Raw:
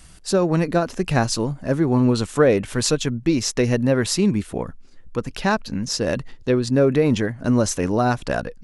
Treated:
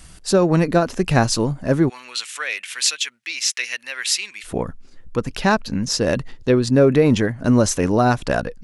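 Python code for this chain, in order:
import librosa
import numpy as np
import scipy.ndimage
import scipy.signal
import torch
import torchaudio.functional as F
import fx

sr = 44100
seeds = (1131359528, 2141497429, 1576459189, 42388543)

y = fx.highpass_res(x, sr, hz=2300.0, q=1.8, at=(1.88, 4.43), fade=0.02)
y = F.gain(torch.from_numpy(y), 3.0).numpy()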